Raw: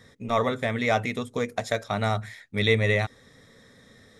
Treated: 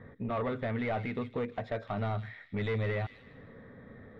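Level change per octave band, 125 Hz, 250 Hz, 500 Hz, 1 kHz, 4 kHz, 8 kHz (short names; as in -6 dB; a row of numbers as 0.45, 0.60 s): -6.0 dB, -5.5 dB, -8.5 dB, -9.0 dB, -17.5 dB, under -30 dB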